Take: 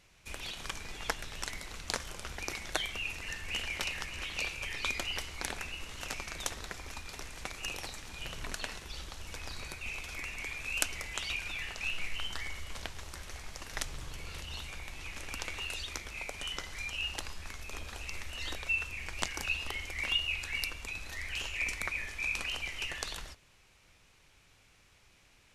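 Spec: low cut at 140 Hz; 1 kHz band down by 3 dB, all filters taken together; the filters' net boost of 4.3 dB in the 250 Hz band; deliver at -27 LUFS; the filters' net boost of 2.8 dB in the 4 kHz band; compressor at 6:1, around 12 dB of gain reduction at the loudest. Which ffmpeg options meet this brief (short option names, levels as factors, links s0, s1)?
-af "highpass=140,equalizer=f=250:t=o:g=6.5,equalizer=f=1000:t=o:g=-4.5,equalizer=f=4000:t=o:g=4.5,acompressor=threshold=0.0141:ratio=6,volume=4.47"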